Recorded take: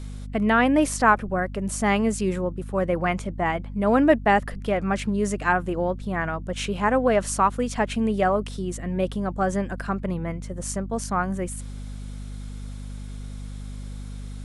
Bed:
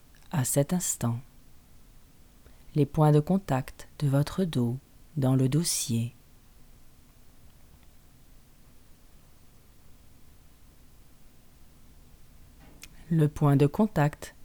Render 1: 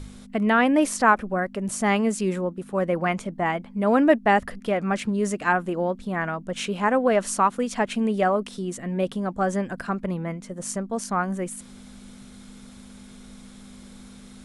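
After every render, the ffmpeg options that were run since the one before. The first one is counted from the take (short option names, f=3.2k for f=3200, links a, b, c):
-af "bandreject=f=50:t=h:w=4,bandreject=f=100:t=h:w=4,bandreject=f=150:t=h:w=4"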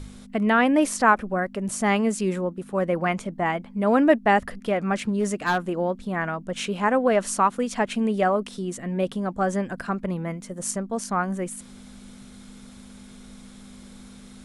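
-filter_complex "[0:a]asettb=1/sr,asplit=3[a][b][c];[a]atrim=end=5.024[d];[b]atrim=start=5.02:end=5.77,asetpts=PTS-STARTPTS,afade=t=in:d=0.004:c=qsin,afade=t=out:st=0.746:d=0.004:c=qsin,asoftclip=type=hard:threshold=-17dB[e];[c]atrim=start=5.766[f];[d][e]acrossfade=d=0.004:c1=hsin:c2=qsin[g];[g][f]acrossfade=d=0.004:c1=qsin:c2=hsin,asettb=1/sr,asplit=3[h][i][j];[h]atrim=end=10.164[k];[i]atrim=start=10.16:end=10.71,asetpts=PTS-STARTPTS,afade=t=in:d=0.004:c=qsin,afade=t=out:st=0.546:d=0.004:c=qsin,highshelf=f=8.5k:g=8[l];[j]atrim=start=10.706[m];[k][l]acrossfade=d=0.004:c1=hsin:c2=qsin[n];[n][m]acrossfade=d=0.004:c1=qsin:c2=hsin"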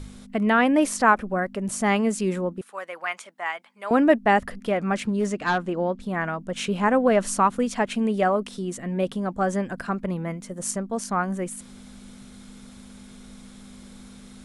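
-filter_complex "[0:a]asettb=1/sr,asplit=3[a][b][c];[a]atrim=end=2.614[d];[b]atrim=start=2.61:end=3.91,asetpts=PTS-STARTPTS,afade=t=in:d=0.004:c=qsin,afade=t=out:st=1.296:d=0.004:c=qsin,highpass=1.1k[e];[c]atrim=start=3.906[f];[d][e]acrossfade=d=0.004:c1=hsin:c2=qsin[g];[g][f]acrossfade=d=0.004:c1=qsin:c2=hsin,asettb=1/sr,asplit=3[h][i][j];[h]atrim=end=5.264[k];[i]atrim=start=5.26:end=6,asetpts=PTS-STARTPTS,afade=t=in:d=0.004:c=qsin,afade=t=out:st=0.736:d=0.004:c=qsin,lowpass=6.6k[l];[j]atrim=start=5.996[m];[k][l]acrossfade=d=0.004:c1=hsin:c2=qsin[n];[n][m]acrossfade=d=0.004:c1=qsin:c2=hsin,asettb=1/sr,asplit=3[o][p][q];[o]atrim=end=6.684[r];[p]atrim=start=6.68:end=7.71,asetpts=PTS-STARTPTS,afade=t=in:d=0.004:c=qsin,afade=t=out:st=1.026:d=0.004:c=qsin,lowshelf=f=160:g=8.5[s];[q]atrim=start=7.706[t];[r][s]acrossfade=d=0.004:c1=hsin:c2=qsin[u];[u][t]acrossfade=d=0.004:c1=qsin:c2=hsin"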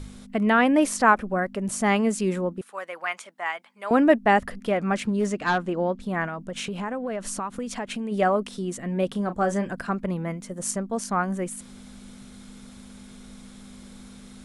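-filter_complex "[0:a]asplit=3[a][b][c];[a]afade=t=out:st=6.26:d=0.02[d];[b]acompressor=threshold=-28dB:ratio=4:attack=3.2:release=140:knee=1:detection=peak,afade=t=in:st=6.26:d=0.02,afade=t=out:st=8.11:d=0.02[e];[c]afade=t=in:st=8.11:d=0.02[f];[d][e][f]amix=inputs=3:normalize=0,asettb=1/sr,asplit=3[g][h][i];[g]atrim=end=9.114[j];[h]atrim=start=9.11:end=9.71,asetpts=PTS-STARTPTS,afade=t=in:d=0.004:c=qsin,afade=t=out:st=0.596:d=0.004:c=qsin,asplit=2[k][l];[l]adelay=34,volume=-11dB[m];[k][m]amix=inputs=2:normalize=0,atrim=end_sample=26460[n];[i]atrim=start=9.706[o];[j][n]acrossfade=d=0.004:c1=hsin:c2=qsin[p];[p][o]acrossfade=d=0.004:c1=qsin:c2=hsin"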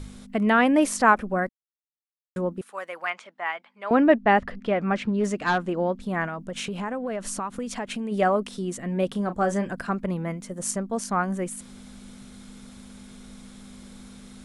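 -filter_complex "[0:a]asettb=1/sr,asplit=3[a][b][c];[a]atrim=end=3.104[d];[b]atrim=start=3.1:end=5.24,asetpts=PTS-STARTPTS,afade=t=in:d=0.004:c=qsin,afade=t=out:st=2.136:d=0.004:c=qsin,lowpass=4k[e];[c]atrim=start=5.236[f];[d][e]acrossfade=d=0.004:c1=hsin:c2=qsin[g];[g][f]acrossfade=d=0.004:c1=qsin:c2=hsin,asplit=3[h][i][j];[h]atrim=end=1.49,asetpts=PTS-STARTPTS,afade=t=out:st=1.486:d=0.004:c=hsin[k];[i]atrim=start=1.49:end=2.36,asetpts=PTS-STARTPTS,volume=0[l];[j]atrim=start=2.36,asetpts=PTS-STARTPTS,afade=t=in:d=0.004:c=hsin[m];[k][l][m]concat=n=3:v=0:a=1"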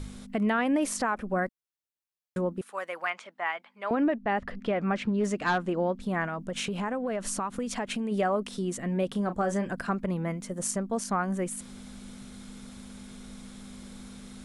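-af "acompressor=threshold=-28dB:ratio=1.5,alimiter=limit=-18dB:level=0:latency=1:release=74"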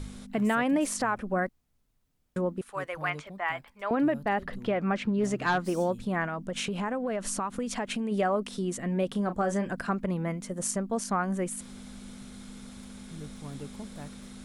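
-filter_complex "[1:a]volume=-20dB[a];[0:a][a]amix=inputs=2:normalize=0"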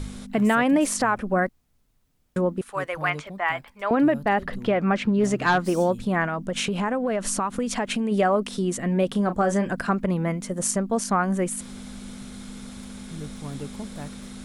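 -af "volume=6dB"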